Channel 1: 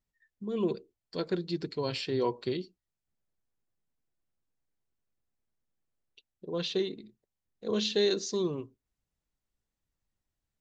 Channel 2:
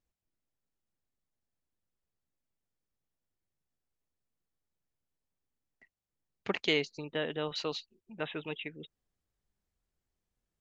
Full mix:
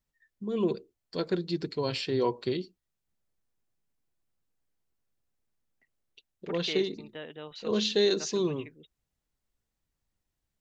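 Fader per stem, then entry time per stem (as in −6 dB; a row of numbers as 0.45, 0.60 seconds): +2.0, −8.0 decibels; 0.00, 0.00 seconds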